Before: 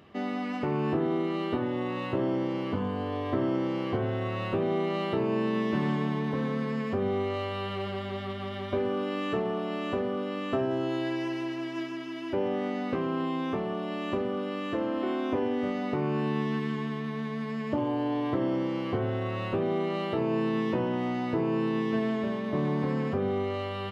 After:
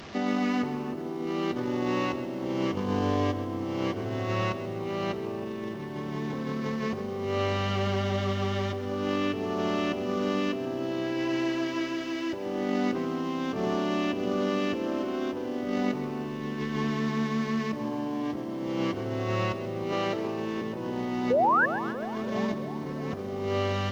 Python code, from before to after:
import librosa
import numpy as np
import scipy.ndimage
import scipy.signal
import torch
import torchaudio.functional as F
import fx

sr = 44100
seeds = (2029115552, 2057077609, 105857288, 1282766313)

y = fx.delta_mod(x, sr, bps=32000, step_db=-42.0)
y = fx.bessel_highpass(y, sr, hz=250.0, order=8, at=(19.92, 20.62))
y = fx.over_compress(y, sr, threshold_db=-32.0, ratio=-0.5)
y = fx.spec_paint(y, sr, seeds[0], shape='rise', start_s=21.3, length_s=0.36, low_hz=460.0, high_hz=1800.0, level_db=-24.0)
y = fx.echo_bbd(y, sr, ms=319, stages=2048, feedback_pct=69, wet_db=-11.5)
y = fx.echo_crushed(y, sr, ms=133, feedback_pct=55, bits=9, wet_db=-12.5)
y = y * 10.0 ** (2.0 / 20.0)